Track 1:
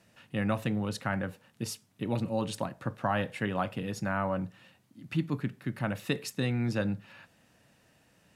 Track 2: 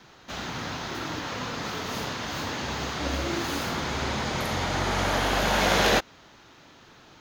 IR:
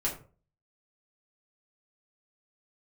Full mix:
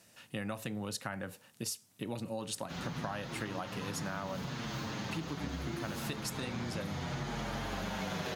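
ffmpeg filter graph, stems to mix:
-filter_complex "[0:a]bass=frequency=250:gain=-4,treble=frequency=4000:gain=10,volume=-0.5dB[link_01];[1:a]equalizer=frequency=160:width=1.3:gain=11.5,asplit=2[link_02][link_03];[link_03]adelay=7.3,afreqshift=-0.73[link_04];[link_02][link_04]amix=inputs=2:normalize=1,adelay=2400,volume=-4dB[link_05];[link_01][link_05]amix=inputs=2:normalize=0,acompressor=threshold=-35dB:ratio=6"

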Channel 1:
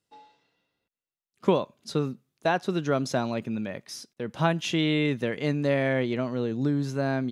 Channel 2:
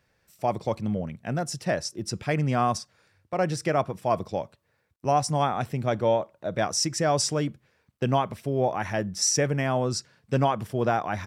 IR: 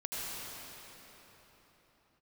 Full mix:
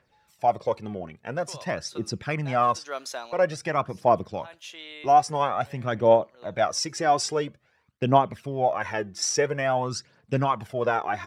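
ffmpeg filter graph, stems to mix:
-filter_complex "[0:a]highpass=580,aemphasis=mode=production:type=75fm,volume=-0.5dB,afade=type=in:start_time=1.38:duration=0.34:silence=0.251189,afade=type=out:start_time=2.86:duration=0.72:silence=0.281838[link_01];[1:a]aphaser=in_gain=1:out_gain=1:delay=2.9:decay=0.55:speed=0.49:type=triangular,volume=1.5dB,asplit=2[link_02][link_03];[link_03]apad=whole_len=322483[link_04];[link_01][link_04]sidechaincompress=threshold=-39dB:ratio=5:attack=23:release=156[link_05];[link_05][link_02]amix=inputs=2:normalize=0,lowpass=frequency=3200:poles=1,lowshelf=frequency=230:gain=-10.5"

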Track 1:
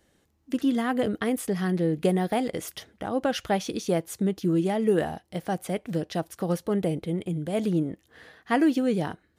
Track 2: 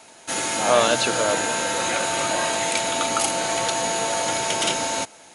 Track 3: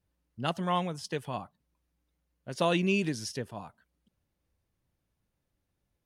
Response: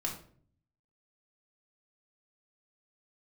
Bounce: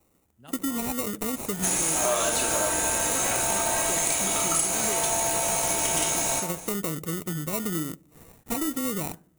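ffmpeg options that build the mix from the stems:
-filter_complex "[0:a]acrusher=bits=5:mode=log:mix=0:aa=0.000001,volume=-2dB,asplit=2[link_01][link_02];[link_02]volume=-21dB[link_03];[1:a]highpass=420,adelay=1350,volume=-0.5dB,asplit=2[link_04][link_05];[link_05]volume=-3dB[link_06];[2:a]volume=-18dB[link_07];[link_01][link_04]amix=inputs=2:normalize=0,acrusher=samples=27:mix=1:aa=0.000001,acompressor=threshold=-26dB:ratio=6,volume=0dB[link_08];[3:a]atrim=start_sample=2205[link_09];[link_03][link_06]amix=inputs=2:normalize=0[link_10];[link_10][link_09]afir=irnorm=-1:irlink=0[link_11];[link_07][link_08][link_11]amix=inputs=3:normalize=0,aexciter=amount=4.8:drive=3.6:freq=6500,acompressor=threshold=-23dB:ratio=3"

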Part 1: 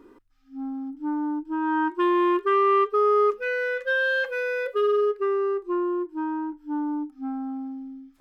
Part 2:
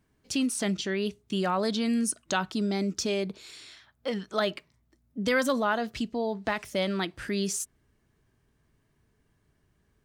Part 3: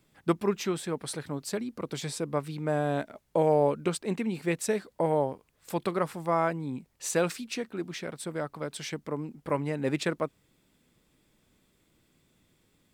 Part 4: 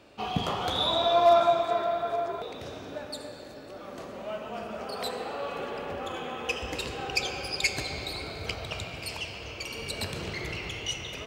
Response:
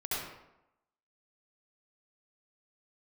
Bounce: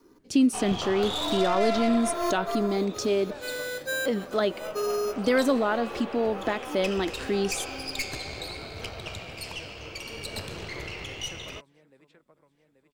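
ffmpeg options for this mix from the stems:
-filter_complex "[0:a]acrusher=samples=8:mix=1:aa=0.000001,volume=-6dB[link_01];[1:a]equalizer=frequency=310:width_type=o:width=1.8:gain=11,volume=-2.5dB,asplit=2[link_02][link_03];[2:a]acrossover=split=360|3800[link_04][link_05][link_06];[link_04]acompressor=threshold=-40dB:ratio=4[link_07];[link_05]acompressor=threshold=-32dB:ratio=4[link_08];[link_06]acompressor=threshold=-54dB:ratio=4[link_09];[link_07][link_08][link_09]amix=inputs=3:normalize=0,adelay=1250,volume=-14dB,asplit=2[link_10][link_11];[link_11]volume=-11.5dB[link_12];[3:a]aeval=exprs='(tanh(20*val(0)+0.55)-tanh(0.55))/20':channel_layout=same,adelay=350,volume=1dB[link_13];[link_03]apad=whole_len=361684[link_14];[link_01][link_14]sidechaincompress=threshold=-46dB:ratio=6:attack=16:release=115[link_15];[link_12]aecho=0:1:833|1666|2499|3332|4165|4998|5831:1|0.5|0.25|0.125|0.0625|0.0312|0.0156[link_16];[link_15][link_02][link_10][link_13][link_16]amix=inputs=5:normalize=0,adynamicequalizer=threshold=0.00501:dfrequency=180:dqfactor=1.4:tfrequency=180:tqfactor=1.4:attack=5:release=100:ratio=0.375:range=3:mode=cutabove:tftype=bell"

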